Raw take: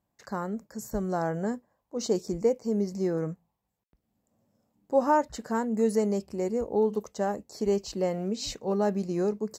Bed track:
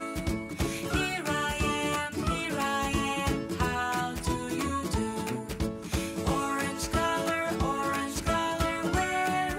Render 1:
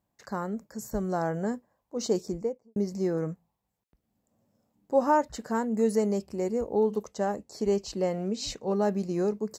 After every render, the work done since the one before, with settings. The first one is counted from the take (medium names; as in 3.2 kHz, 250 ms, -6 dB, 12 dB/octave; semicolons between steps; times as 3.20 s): 2.17–2.76 s: studio fade out; 7.01–8.76 s: low-pass 12 kHz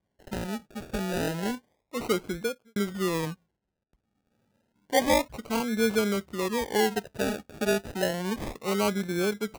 decimation with a swept rate 33×, swing 60% 0.3 Hz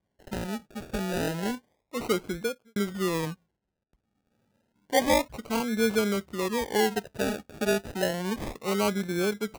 no audible change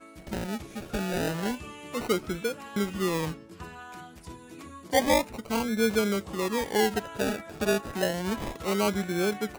add bed track -14 dB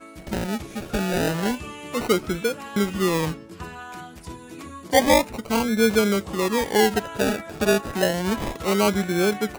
trim +6 dB